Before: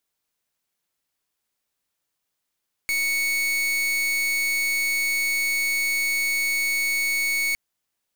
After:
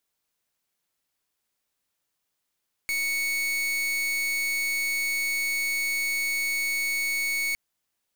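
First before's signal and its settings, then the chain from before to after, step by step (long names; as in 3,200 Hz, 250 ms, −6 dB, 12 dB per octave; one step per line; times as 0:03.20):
pulse wave 2,220 Hz, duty 41% −23.5 dBFS 4.66 s
brickwall limiter −27 dBFS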